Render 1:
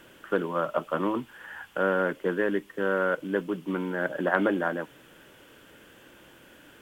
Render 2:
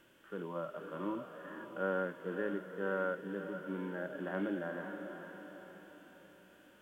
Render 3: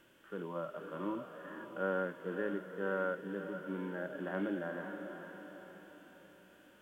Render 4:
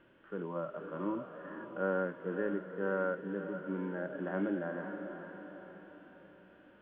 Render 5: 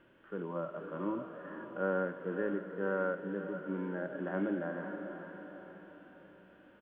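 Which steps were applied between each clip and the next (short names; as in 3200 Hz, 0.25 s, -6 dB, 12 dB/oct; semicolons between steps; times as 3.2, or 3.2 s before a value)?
diffused feedback echo 0.517 s, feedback 48%, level -9 dB; harmonic-percussive split percussive -16 dB; gain -8 dB
nothing audible
air absorption 460 m; gain +3.5 dB
echo 0.153 s -16 dB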